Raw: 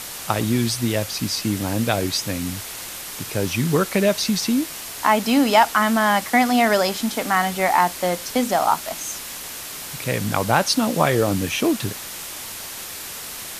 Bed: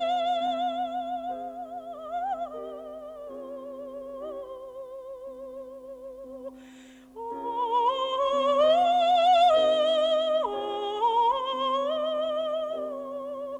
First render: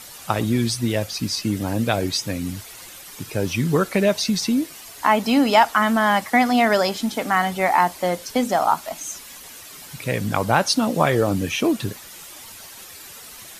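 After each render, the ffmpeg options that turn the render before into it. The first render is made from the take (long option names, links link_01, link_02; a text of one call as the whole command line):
ffmpeg -i in.wav -af "afftdn=noise_reduction=10:noise_floor=-34" out.wav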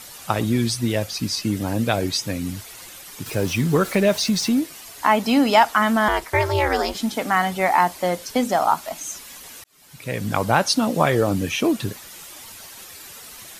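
ffmpeg -i in.wav -filter_complex "[0:a]asettb=1/sr,asplit=3[link_01][link_02][link_03];[link_01]atrim=end=3.264[link_04];[link_02]atrim=start=3.26:end=4.6,asetpts=PTS-STARTPTS,afade=type=in:duration=0.004:curve=qsin,afade=type=out:start_time=1.336:duration=0.004:curve=qsin,aeval=exprs='val(0)+0.5*0.0211*sgn(val(0))':channel_layout=same[link_05];[link_03]atrim=start=4.596[link_06];[link_04][link_05]acrossfade=duration=0.004:curve1=hsin:curve2=qsin[link_07];[link_07][link_06]acrossfade=duration=0.004:curve1=qsin:curve2=hsin,asettb=1/sr,asplit=3[link_08][link_09][link_10];[link_08]atrim=end=6.084[link_11];[link_09]atrim=start=6.08:end=6.95,asetpts=PTS-STARTPTS,afade=type=in:duration=0.004:curve=qsin,afade=type=out:start_time=0.866:duration=0.004:curve=qsin,aeval=exprs='val(0)*sin(2*PI*150*n/s)':channel_layout=same[link_12];[link_10]atrim=start=6.946[link_13];[link_11][link_12]acrossfade=duration=0.004:curve1=hsin:curve2=qsin[link_14];[link_14][link_13]acrossfade=duration=0.004:curve1=qsin:curve2=hsin,asplit=2[link_15][link_16];[link_15]atrim=end=9.64,asetpts=PTS-STARTPTS,afade=type=out:start_time=9.636:duration=0.004:curve=hsin[link_17];[link_16]atrim=start=9.64,asetpts=PTS-STARTPTS,afade=type=in:duration=0.72[link_18];[link_17][link_18]concat=n=2:v=0:a=1" out.wav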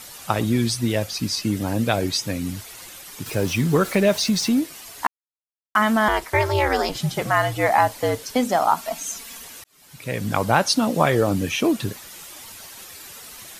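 ffmpeg -i in.wav -filter_complex "[0:a]asettb=1/sr,asplit=3[link_01][link_02][link_03];[link_01]atrim=end=6.894[link_04];[link_02]atrim=start=6.89:end=8.23,asetpts=PTS-STARTPTS,afade=type=in:duration=0.004:curve=qsin,afade=type=out:start_time=1.336:duration=0.004:curve=qsin,afreqshift=-69[link_05];[link_03]atrim=start=8.226[link_06];[link_04][link_05]acrossfade=duration=0.004:curve1=hsin:curve2=qsin[link_07];[link_07][link_06]acrossfade=duration=0.004:curve1=qsin:curve2=hsin,asettb=1/sr,asplit=3[link_08][link_09][link_10];[link_08]atrim=end=8.764[link_11];[link_09]atrim=start=8.76:end=9.45,asetpts=PTS-STARTPTS,afade=type=in:duration=0.004:curve=qsin,afade=type=out:start_time=0.686:duration=0.004:curve=qsin,aecho=1:1:4.4:0.69,atrim=end_sample=30429[link_12];[link_10]atrim=start=9.446[link_13];[link_11][link_12]acrossfade=duration=0.004:curve1=hsin:curve2=qsin[link_14];[link_14][link_13]acrossfade=duration=0.004:curve1=qsin:curve2=hsin,asplit=3[link_15][link_16][link_17];[link_15]atrim=end=5.07,asetpts=PTS-STARTPTS,afade=type=out:start_time=5.066:duration=0.004:curve=hsin[link_18];[link_16]atrim=start=5.07:end=5.75,asetpts=PTS-STARTPTS,volume=0[link_19];[link_17]atrim=start=5.75,asetpts=PTS-STARTPTS,afade=type=in:duration=0.004:curve=hsin[link_20];[link_18][link_19][link_20]concat=n=3:v=0:a=1" out.wav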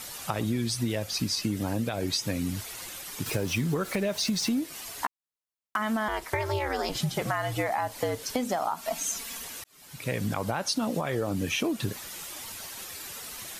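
ffmpeg -i in.wav -af "alimiter=limit=-11.5dB:level=0:latency=1:release=228,acompressor=threshold=-25dB:ratio=6" out.wav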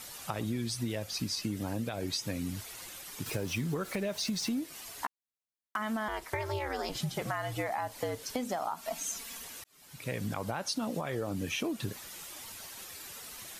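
ffmpeg -i in.wav -af "volume=-5.5dB" out.wav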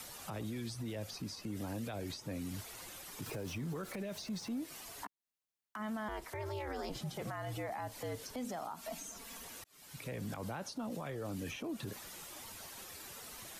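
ffmpeg -i in.wav -filter_complex "[0:a]acrossover=split=190|440|1300[link_01][link_02][link_03][link_04];[link_01]acompressor=threshold=-42dB:ratio=4[link_05];[link_02]acompressor=threshold=-42dB:ratio=4[link_06];[link_03]acompressor=threshold=-43dB:ratio=4[link_07];[link_04]acompressor=threshold=-48dB:ratio=4[link_08];[link_05][link_06][link_07][link_08]amix=inputs=4:normalize=0,alimiter=level_in=9dB:limit=-24dB:level=0:latency=1:release=11,volume=-9dB" out.wav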